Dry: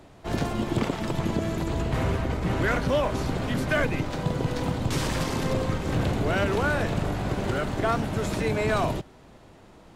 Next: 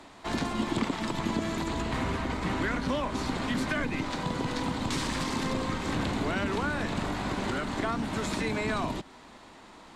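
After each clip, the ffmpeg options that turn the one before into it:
-filter_complex "[0:a]equalizer=f=125:t=o:w=1:g=-5,equalizer=f=250:t=o:w=1:g=8,equalizer=f=1k:t=o:w=1:g=11,equalizer=f=2k:t=o:w=1:g=8,equalizer=f=4k:t=o:w=1:g=10,equalizer=f=8k:t=o:w=1:g=10,acrossover=split=340[a][b];[b]acompressor=threshold=-27dB:ratio=3[c];[a][c]amix=inputs=2:normalize=0,volume=-6.5dB"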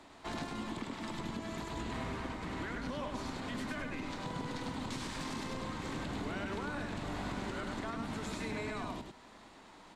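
-af "alimiter=level_in=0.5dB:limit=-24dB:level=0:latency=1:release=298,volume=-0.5dB,aecho=1:1:102:0.631,volume=-6.5dB"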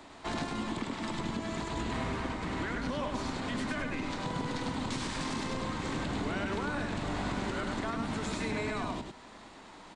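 -af "aresample=22050,aresample=44100,volume=5dB"

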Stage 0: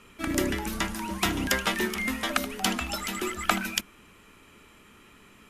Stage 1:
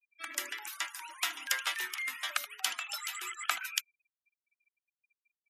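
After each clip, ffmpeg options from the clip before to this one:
-af "highpass=1.3k,highshelf=f=6.8k:g=2,afftfilt=real='re*gte(hypot(re,im),0.00794)':imag='im*gte(hypot(re,im),0.00794)':win_size=1024:overlap=0.75,volume=-4.5dB"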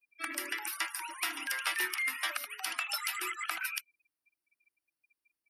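-af "superequalizer=6b=2.51:13b=0.562:15b=0.355:16b=1.41,alimiter=limit=-23dB:level=0:latency=1:release=135,volume=4.5dB"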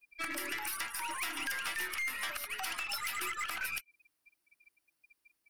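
-af "acompressor=threshold=-40dB:ratio=6,asoftclip=type=tanh:threshold=-39dB,aeval=exprs='0.0112*(cos(1*acos(clip(val(0)/0.0112,-1,1)))-cos(1*PI/2))+0.001*(cos(4*acos(clip(val(0)/0.0112,-1,1)))-cos(4*PI/2))+0.0002*(cos(8*acos(clip(val(0)/0.0112,-1,1)))-cos(8*PI/2))':c=same,volume=8.5dB"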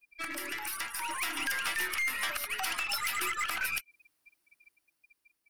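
-af "dynaudnorm=f=310:g=7:m=4.5dB"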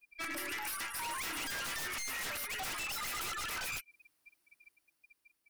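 -af "aeval=exprs='0.0211*(abs(mod(val(0)/0.0211+3,4)-2)-1)':c=same"

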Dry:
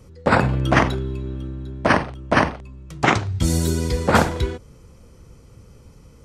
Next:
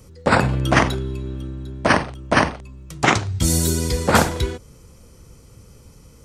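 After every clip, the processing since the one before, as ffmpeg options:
-af "highshelf=f=4.9k:g=10"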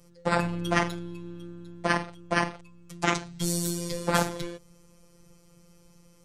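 -af "afftfilt=real='hypot(re,im)*cos(PI*b)':imag='0':win_size=1024:overlap=0.75,volume=-5.5dB"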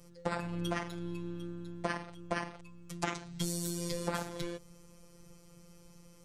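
-af "acompressor=threshold=-30dB:ratio=10"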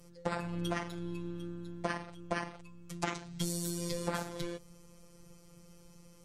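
-ar 48000 -c:a libvorbis -b:a 64k

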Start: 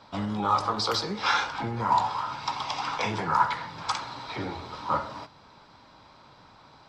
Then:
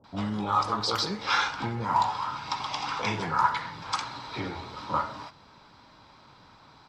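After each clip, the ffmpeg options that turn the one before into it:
-filter_complex "[0:a]acrossover=split=620[a][b];[b]adelay=40[c];[a][c]amix=inputs=2:normalize=0"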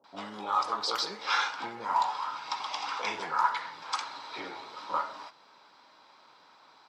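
-af "highpass=430,volume=-2.5dB"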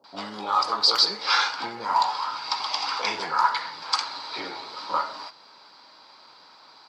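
-af "equalizer=f=4.6k:t=o:w=0.28:g=12.5,volume=5dB"

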